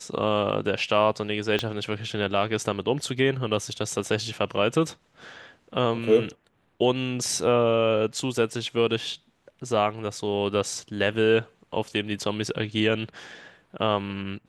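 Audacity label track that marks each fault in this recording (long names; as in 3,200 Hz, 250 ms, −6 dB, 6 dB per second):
1.590000	1.590000	click −12 dBFS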